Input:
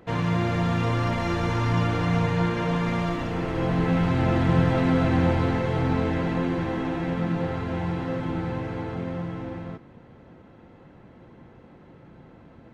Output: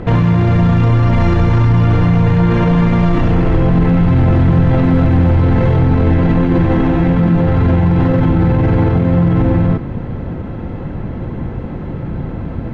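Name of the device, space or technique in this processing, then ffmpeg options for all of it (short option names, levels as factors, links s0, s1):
loud club master: -af "aemphasis=mode=reproduction:type=bsi,acompressor=threshold=0.112:ratio=2,asoftclip=type=hard:threshold=0.224,alimiter=level_in=15.8:limit=0.891:release=50:level=0:latency=1,volume=0.631"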